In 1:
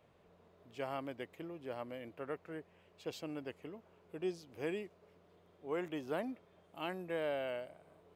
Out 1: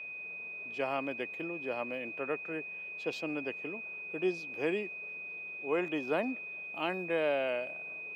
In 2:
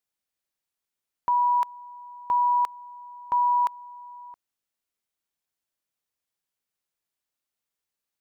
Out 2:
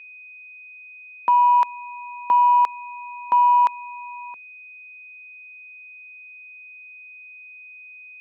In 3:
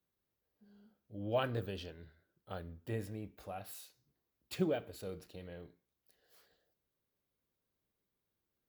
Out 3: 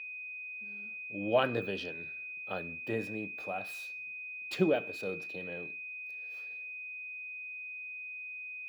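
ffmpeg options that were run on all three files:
ffmpeg -i in.wav -filter_complex "[0:a]acontrast=68,aeval=exprs='val(0)+0.01*sin(2*PI*2500*n/s)':channel_layout=same,acrossover=split=150 5800:gain=0.1 1 0.251[link_01][link_02][link_03];[link_01][link_02][link_03]amix=inputs=3:normalize=0" out.wav

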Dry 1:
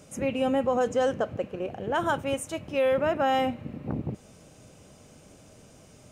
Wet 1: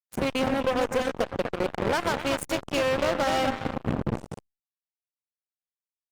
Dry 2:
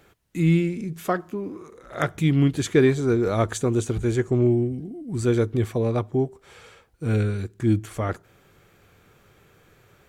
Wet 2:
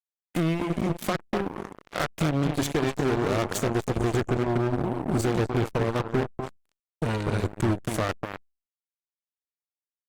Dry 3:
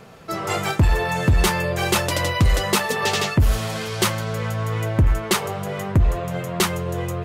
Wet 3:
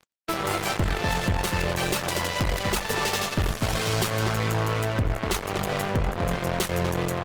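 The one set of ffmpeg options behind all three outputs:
ffmpeg -i in.wav -filter_complex "[0:a]acompressor=threshold=-29dB:ratio=16,asplit=2[link_01][link_02];[link_02]adelay=247,lowpass=frequency=1400:poles=1,volume=-4.5dB,asplit=2[link_03][link_04];[link_04]adelay=247,lowpass=frequency=1400:poles=1,volume=0.28,asplit=2[link_05][link_06];[link_06]adelay=247,lowpass=frequency=1400:poles=1,volume=0.28,asplit=2[link_07][link_08];[link_08]adelay=247,lowpass=frequency=1400:poles=1,volume=0.28[link_09];[link_03][link_05][link_07][link_09]amix=inputs=4:normalize=0[link_10];[link_01][link_10]amix=inputs=2:normalize=0,asoftclip=type=hard:threshold=-27.5dB,acrusher=bits=4:mix=0:aa=0.5,aeval=exprs='0.0596*(cos(1*acos(clip(val(0)/0.0596,-1,1)))-cos(1*PI/2))+0.0106*(cos(2*acos(clip(val(0)/0.0596,-1,1)))-cos(2*PI/2))+0.00299*(cos(5*acos(clip(val(0)/0.0596,-1,1)))-cos(5*PI/2))':channel_layout=same,volume=6dB" -ar 48000 -c:a libopus -b:a 32k out.opus

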